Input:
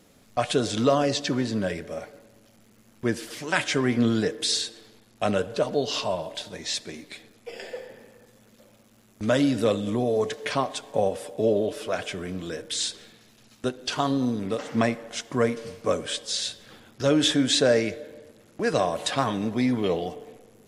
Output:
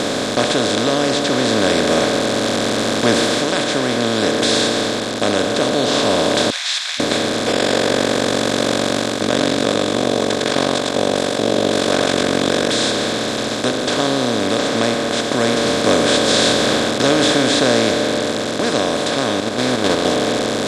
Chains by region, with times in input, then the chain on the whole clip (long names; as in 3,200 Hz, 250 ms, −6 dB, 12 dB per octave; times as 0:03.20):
0:06.50–0:07.00: Butterworth high-pass 2,200 Hz 48 dB per octave + high-frequency loss of the air 170 metres
0:07.52–0:12.70: amplitude modulation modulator 47 Hz, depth 70% + single-tap delay 105 ms −4 dB
0:19.40–0:20.05: lower of the sound and its delayed copy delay 0.41 ms + noise gate −25 dBFS, range −14 dB
whole clip: compressor on every frequency bin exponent 0.2; automatic gain control; level −1 dB